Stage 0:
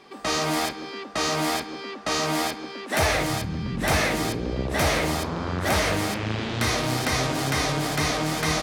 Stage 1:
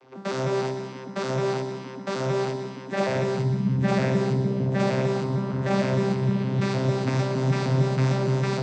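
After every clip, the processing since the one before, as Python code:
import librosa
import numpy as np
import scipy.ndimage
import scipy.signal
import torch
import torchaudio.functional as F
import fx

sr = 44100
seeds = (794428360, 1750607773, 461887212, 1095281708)

y = fx.vocoder_arp(x, sr, chord='bare fifth', root=48, every_ms=153)
y = fx.echo_heads(y, sr, ms=61, heads='all three', feedback_pct=49, wet_db=-13.5)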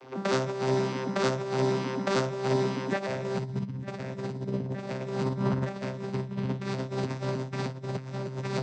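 y = fx.over_compress(x, sr, threshold_db=-29.0, ratio=-0.5)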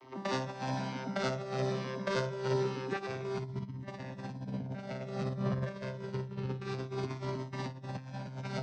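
y = fx.peak_eq(x, sr, hz=7300.0, db=-9.5, octaves=0.21)
y = fx.comb_cascade(y, sr, direction='falling', hz=0.27)
y = y * 10.0 ** (-1.0 / 20.0)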